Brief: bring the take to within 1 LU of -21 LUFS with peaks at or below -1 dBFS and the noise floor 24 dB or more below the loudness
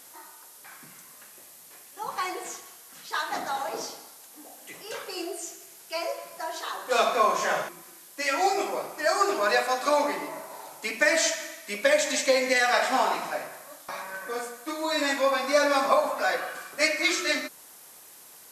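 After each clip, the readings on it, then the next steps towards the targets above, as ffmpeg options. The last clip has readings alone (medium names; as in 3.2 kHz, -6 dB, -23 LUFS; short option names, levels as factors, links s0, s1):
noise floor -50 dBFS; noise floor target -51 dBFS; loudness -26.5 LUFS; peak level -7.5 dBFS; loudness target -21.0 LUFS
-> -af "afftdn=nr=6:nf=-50"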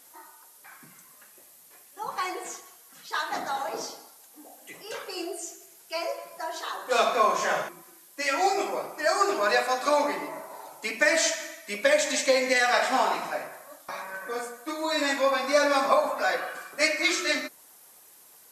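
noise floor -54 dBFS; loudness -26.5 LUFS; peak level -8.0 dBFS; loudness target -21.0 LUFS
-> -af "volume=1.88"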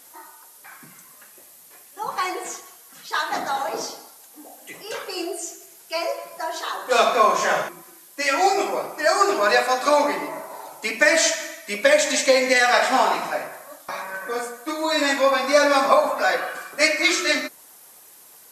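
loudness -21.0 LUFS; peak level -2.5 dBFS; noise floor -49 dBFS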